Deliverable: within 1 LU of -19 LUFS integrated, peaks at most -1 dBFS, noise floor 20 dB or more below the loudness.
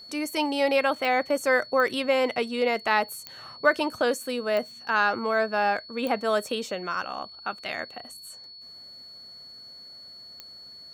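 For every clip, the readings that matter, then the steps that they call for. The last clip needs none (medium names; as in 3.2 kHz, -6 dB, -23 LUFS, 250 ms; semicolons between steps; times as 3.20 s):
clicks found 6; steady tone 4.4 kHz; tone level -43 dBFS; loudness -26.0 LUFS; peak level -7.0 dBFS; loudness target -19.0 LUFS
-> de-click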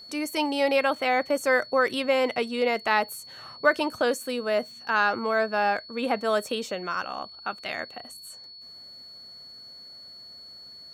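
clicks found 0; steady tone 4.4 kHz; tone level -43 dBFS
-> band-stop 4.4 kHz, Q 30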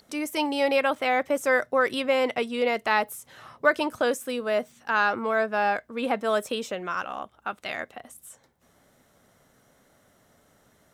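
steady tone not found; loudness -26.0 LUFS; peak level -7.0 dBFS; loudness target -19.0 LUFS
-> trim +7 dB; peak limiter -1 dBFS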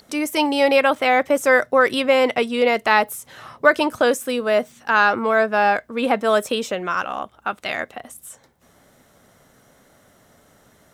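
loudness -19.0 LUFS; peak level -1.0 dBFS; noise floor -56 dBFS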